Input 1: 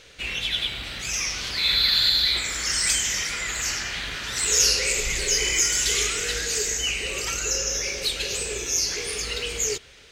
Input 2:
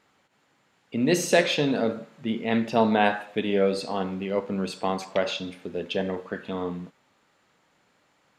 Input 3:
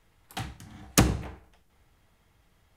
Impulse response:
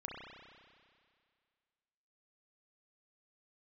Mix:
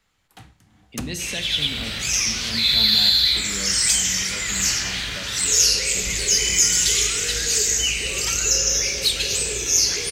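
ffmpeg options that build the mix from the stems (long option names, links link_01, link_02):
-filter_complex "[0:a]highpass=54,dynaudnorm=framelen=130:gausssize=7:maxgain=10dB,adelay=1000,volume=-2dB[link_01];[1:a]equalizer=frequency=550:width=0.37:gain=-14.5,volume=2dB[link_02];[2:a]volume=-9.5dB[link_03];[link_01][link_02][link_03]amix=inputs=3:normalize=0,acrossover=split=230|3000[link_04][link_05][link_06];[link_05]acompressor=threshold=-34dB:ratio=2.5[link_07];[link_04][link_07][link_06]amix=inputs=3:normalize=0"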